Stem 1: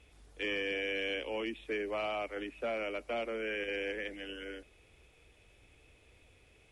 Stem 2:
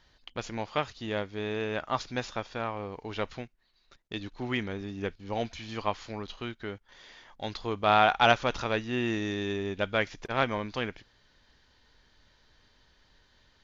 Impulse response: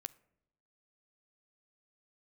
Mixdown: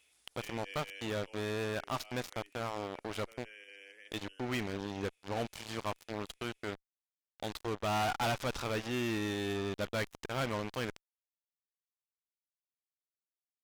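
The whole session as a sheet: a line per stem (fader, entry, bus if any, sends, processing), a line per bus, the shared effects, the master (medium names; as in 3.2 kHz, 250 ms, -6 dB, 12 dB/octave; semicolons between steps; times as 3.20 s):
-11.5 dB, 0.00 s, send -10.5 dB, tilt EQ +4.5 dB/octave; auto duck -13 dB, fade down 1.55 s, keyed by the second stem
-5.0 dB, 0.00 s, no send, fuzz box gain 30 dB, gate -38 dBFS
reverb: on, RT60 0.85 s, pre-delay 10 ms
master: peak limiter -28.5 dBFS, peak gain reduction 12 dB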